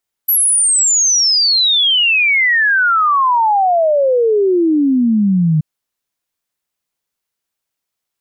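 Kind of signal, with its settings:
exponential sine sweep 12,000 Hz → 150 Hz 5.33 s −9.5 dBFS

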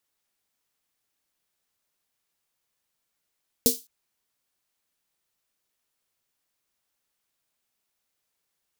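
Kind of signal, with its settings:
synth snare length 0.21 s, tones 250 Hz, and 460 Hz, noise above 3,900 Hz, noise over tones 2 dB, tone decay 0.17 s, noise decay 0.27 s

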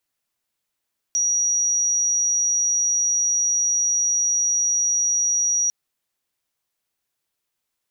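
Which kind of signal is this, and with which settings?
tone sine 5,770 Hz −17.5 dBFS 4.55 s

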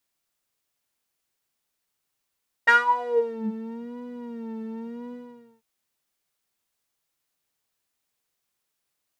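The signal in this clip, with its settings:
subtractive patch with vibrato A#4, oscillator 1 saw, interval +12 semitones, detune 7 cents, oscillator 2 level −3.5 dB, sub −13 dB, noise −21 dB, filter bandpass, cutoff 110 Hz, Q 10, filter envelope 4 octaves, filter decay 0.84 s, filter sustain 20%, attack 20 ms, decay 0.16 s, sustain −16 dB, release 0.49 s, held 2.46 s, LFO 0.9 Hz, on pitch 84 cents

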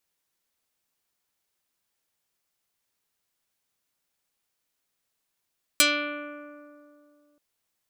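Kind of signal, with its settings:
Karplus-Strong string D4, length 1.58 s, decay 2.65 s, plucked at 0.32, dark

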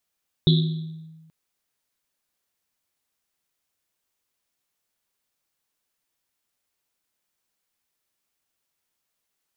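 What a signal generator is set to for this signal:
drum after Risset length 0.83 s, pitch 160 Hz, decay 1.37 s, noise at 3,700 Hz, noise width 660 Hz, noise 20%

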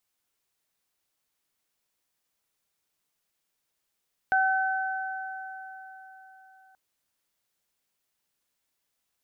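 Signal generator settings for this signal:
harmonic partials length 2.43 s, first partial 762 Hz, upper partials 0 dB, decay 4.15 s, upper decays 3.76 s, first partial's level −22 dB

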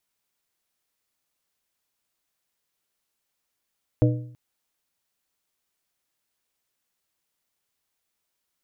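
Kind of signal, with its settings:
struck metal plate, length 0.33 s, lowest mode 122 Hz, modes 4, decay 0.62 s, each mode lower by 4 dB, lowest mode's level −14 dB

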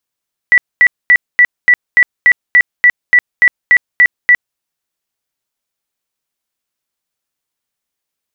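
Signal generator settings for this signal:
tone bursts 1,960 Hz, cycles 115, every 0.29 s, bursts 14, −3 dBFS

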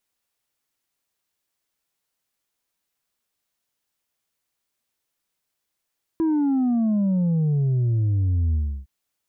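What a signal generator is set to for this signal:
bass drop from 330 Hz, over 2.66 s, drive 3 dB, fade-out 0.32 s, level −18.5 dB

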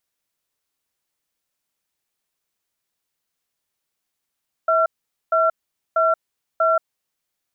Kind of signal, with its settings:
tone pair in a cadence 650 Hz, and 1,360 Hz, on 0.18 s, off 0.46 s, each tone −17 dBFS 2.25 s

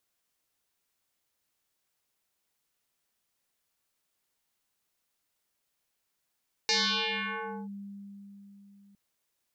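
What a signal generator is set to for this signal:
two-operator FM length 2.26 s, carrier 200 Hz, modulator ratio 3.26, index 8.7, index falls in 0.99 s linear, decay 4.04 s, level −22.5 dB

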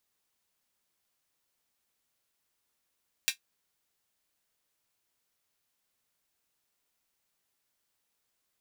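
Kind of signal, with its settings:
closed synth hi-hat, high-pass 2,400 Hz, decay 0.11 s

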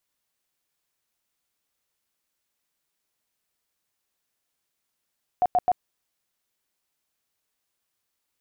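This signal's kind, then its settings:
tone bursts 724 Hz, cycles 27, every 0.13 s, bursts 3, −16.5 dBFS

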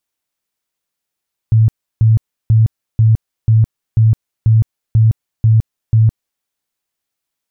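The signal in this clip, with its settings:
tone bursts 111 Hz, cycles 18, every 0.49 s, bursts 10, −6 dBFS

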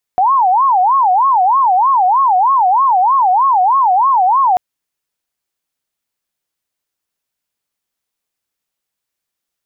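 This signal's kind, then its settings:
siren wail 725–1,100 Hz 3.2 per second sine −8 dBFS 4.39 s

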